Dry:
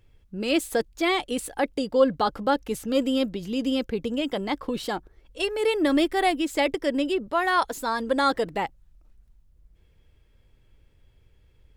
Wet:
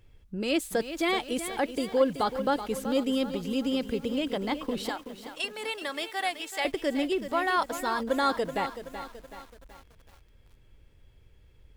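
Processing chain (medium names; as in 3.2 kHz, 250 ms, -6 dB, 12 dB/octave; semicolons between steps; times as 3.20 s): in parallel at +1.5 dB: compression 6:1, threshold -35 dBFS, peak gain reduction 19.5 dB; 4.89–6.65 s: on the sum: high-pass 820 Hz 12 dB/octave; bit-crushed delay 378 ms, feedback 55%, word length 7-bit, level -10.5 dB; trim -5.5 dB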